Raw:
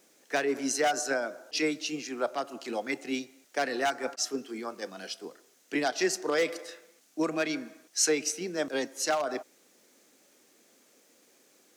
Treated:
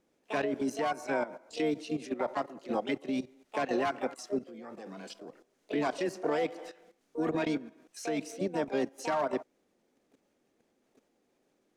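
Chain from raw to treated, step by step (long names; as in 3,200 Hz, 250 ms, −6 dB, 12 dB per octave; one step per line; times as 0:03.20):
RIAA equalisation playback
output level in coarse steps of 15 dB
pitch-shifted copies added +7 semitones −6 dB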